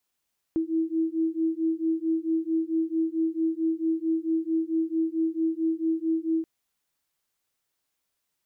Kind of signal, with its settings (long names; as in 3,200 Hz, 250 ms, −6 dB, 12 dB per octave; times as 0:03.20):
two tones that beat 322 Hz, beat 4.5 Hz, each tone −26.5 dBFS 5.88 s